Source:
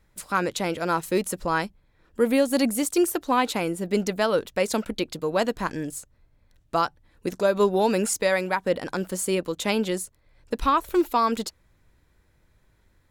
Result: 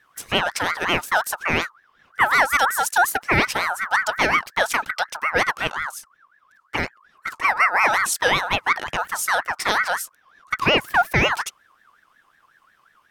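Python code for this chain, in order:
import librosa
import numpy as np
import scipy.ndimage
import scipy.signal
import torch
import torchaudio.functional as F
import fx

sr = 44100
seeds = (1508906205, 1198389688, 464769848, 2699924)

y = fx.env_flanger(x, sr, rest_ms=6.3, full_db=-19.0, at=(5.91, 7.74), fade=0.02)
y = fx.ring_lfo(y, sr, carrier_hz=1400.0, swing_pct=25, hz=5.5)
y = y * 10.0 ** (6.0 / 20.0)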